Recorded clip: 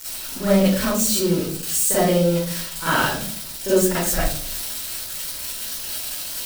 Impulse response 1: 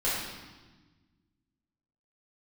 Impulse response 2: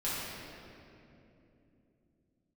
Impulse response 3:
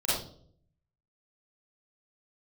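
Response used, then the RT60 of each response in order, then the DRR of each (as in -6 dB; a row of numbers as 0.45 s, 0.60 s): 3; 1.3 s, 2.9 s, no single decay rate; -9.5 dB, -10.5 dB, -11.0 dB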